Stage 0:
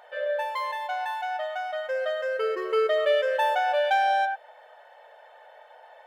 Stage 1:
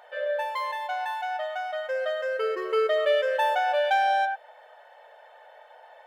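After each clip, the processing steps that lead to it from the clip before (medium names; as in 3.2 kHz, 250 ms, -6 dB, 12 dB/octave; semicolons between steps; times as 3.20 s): peaking EQ 140 Hz -11.5 dB 0.78 oct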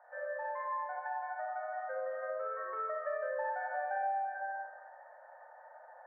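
Chebyshev band-pass 530–1800 Hz, order 4; reverberation RT60 1.2 s, pre-delay 32 ms, DRR -4 dB; compression 2.5:1, threshold -28 dBFS, peak gain reduction 10 dB; trim -8.5 dB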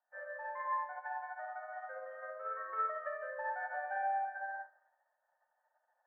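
in parallel at +1.5 dB: peak limiter -33.5 dBFS, peak gain reduction 8 dB; on the sum: high-pass 1.3 kHz 6 dB/octave; upward expansion 2.5:1, over -55 dBFS; trim +2.5 dB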